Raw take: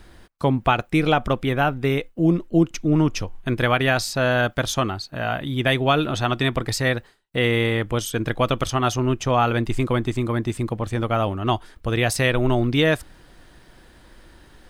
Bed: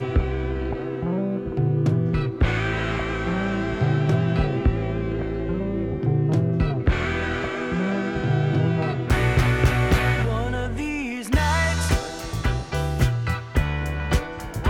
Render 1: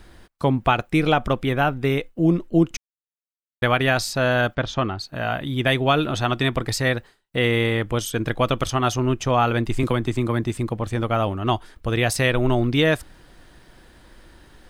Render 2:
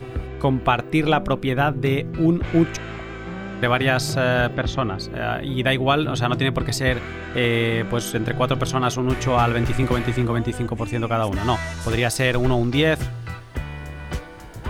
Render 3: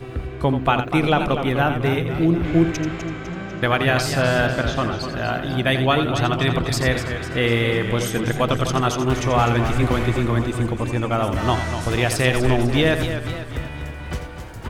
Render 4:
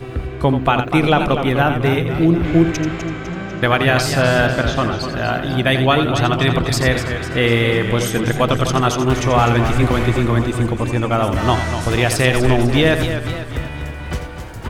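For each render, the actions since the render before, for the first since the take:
0:02.77–0:03.62: silence; 0:04.55–0:04.99: high-frequency loss of the air 180 metres; 0:09.83–0:10.44: multiband upward and downward compressor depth 70%
mix in bed −7.5 dB
on a send: single-tap delay 85 ms −9.5 dB; on the sum: feedback echo with a swinging delay time 249 ms, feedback 53%, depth 101 cents, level −9.5 dB
level +4 dB; brickwall limiter −3 dBFS, peak gain reduction 2 dB

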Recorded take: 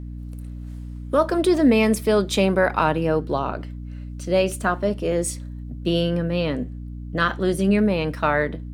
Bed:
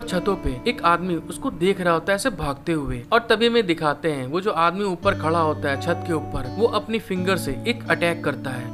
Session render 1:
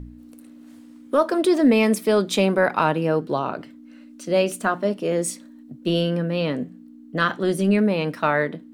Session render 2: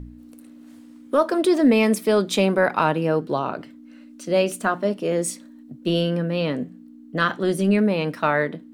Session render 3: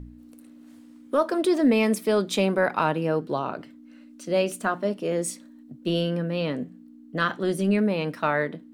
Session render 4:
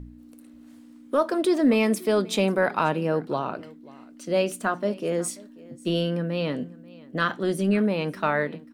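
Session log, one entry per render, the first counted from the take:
hum removal 60 Hz, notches 3
no processing that can be heard
level −3.5 dB
single-tap delay 538 ms −22 dB

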